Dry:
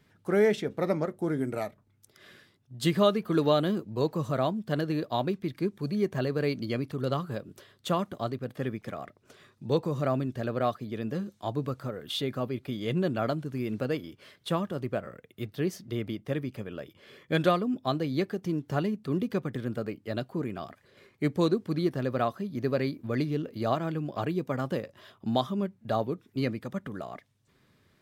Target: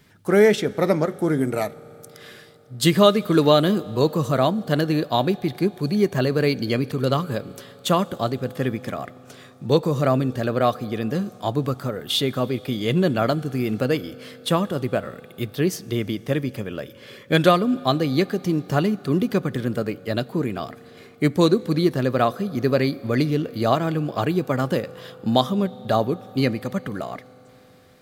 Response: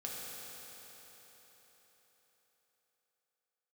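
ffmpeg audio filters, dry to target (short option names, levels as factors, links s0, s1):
-filter_complex "[0:a]highshelf=f=4000:g=6,asplit=2[s0][s1];[1:a]atrim=start_sample=2205[s2];[s1][s2]afir=irnorm=-1:irlink=0,volume=0.119[s3];[s0][s3]amix=inputs=2:normalize=0,volume=2.37"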